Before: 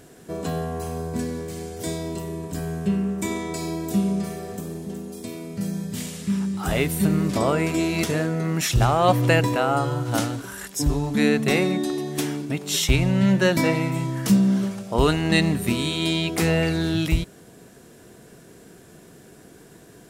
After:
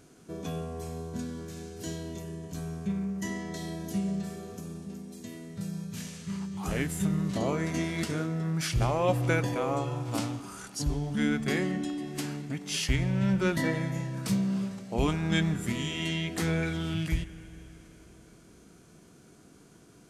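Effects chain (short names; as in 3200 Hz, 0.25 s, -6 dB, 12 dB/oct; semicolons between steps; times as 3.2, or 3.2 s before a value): spring tank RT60 3.6 s, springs 31/48 ms, chirp 20 ms, DRR 14 dB; formant shift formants -3 st; gain -8 dB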